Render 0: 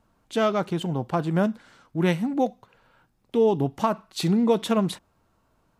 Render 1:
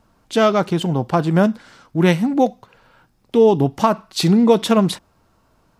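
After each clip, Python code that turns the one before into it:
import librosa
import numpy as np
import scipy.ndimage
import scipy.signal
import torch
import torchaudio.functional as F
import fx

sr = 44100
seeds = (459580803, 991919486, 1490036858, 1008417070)

y = fx.peak_eq(x, sr, hz=5100.0, db=4.0, octaves=0.44)
y = F.gain(torch.from_numpy(y), 7.5).numpy()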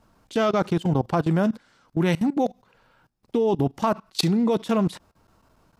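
y = fx.level_steps(x, sr, step_db=20)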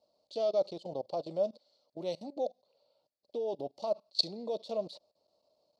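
y = fx.double_bandpass(x, sr, hz=1600.0, octaves=2.9)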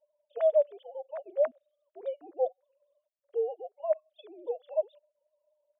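y = fx.sine_speech(x, sr)
y = F.gain(torch.from_numpy(y), 3.5).numpy()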